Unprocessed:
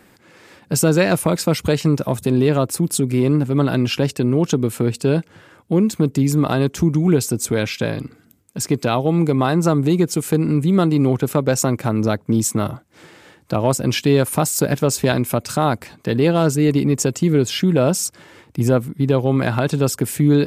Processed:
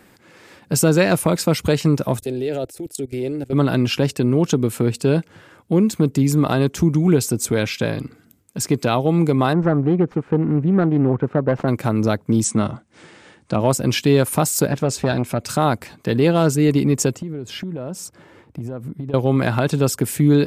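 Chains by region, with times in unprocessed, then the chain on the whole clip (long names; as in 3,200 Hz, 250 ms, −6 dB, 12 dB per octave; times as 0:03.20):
0:02.20–0:03.53: parametric band 980 Hz +4 dB 1.6 octaves + output level in coarse steps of 20 dB + phaser with its sweep stopped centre 450 Hz, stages 4
0:09.53–0:11.68: phase distortion by the signal itself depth 0.19 ms + Chebyshev low-pass filter 1,300 Hz
0:12.44–0:13.61: Chebyshev low-pass filter 9,900 Hz, order 8 + parametric band 220 Hz +6 dB 0.21 octaves
0:14.67–0:15.44: high-frequency loss of the air 54 metres + saturating transformer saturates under 430 Hz
0:17.15–0:19.14: high-shelf EQ 2,000 Hz −11.5 dB + downward compressor 12 to 1, threshold −24 dBFS
whole clip: no processing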